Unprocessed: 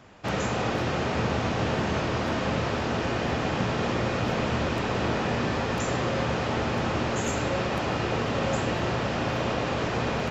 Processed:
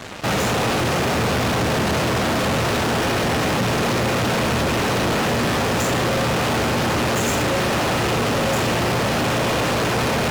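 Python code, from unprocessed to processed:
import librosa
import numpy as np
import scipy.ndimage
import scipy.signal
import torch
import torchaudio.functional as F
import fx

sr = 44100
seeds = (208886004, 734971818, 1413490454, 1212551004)

p1 = scipy.signal.sosfilt(scipy.signal.butter(2, 67.0, 'highpass', fs=sr, output='sos'), x)
p2 = fx.fuzz(p1, sr, gain_db=50.0, gate_db=-50.0)
p3 = p1 + (p2 * librosa.db_to_amplitude(-4.5))
y = p3 * librosa.db_to_amplitude(-4.0)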